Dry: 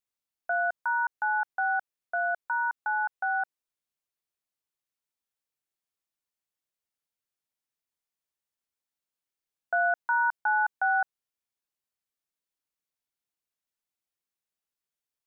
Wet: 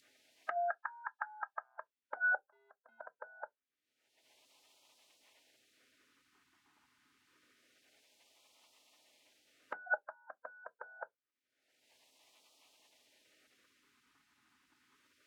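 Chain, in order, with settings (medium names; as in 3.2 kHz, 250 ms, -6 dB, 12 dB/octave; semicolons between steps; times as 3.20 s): in parallel at +2 dB: peak limiter -29 dBFS, peak gain reduction 11 dB; 2.39–3.01 s: on the sum: gate -21 dBFS, range -24 dB; upward compressor, threshold -29 dBFS; wah-wah 0.26 Hz 550–1600 Hz, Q 6.9; spectral gate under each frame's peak -20 dB weak; on a send at -8.5 dB: reverberation, pre-delay 3 ms; on the sum: trim +15 dB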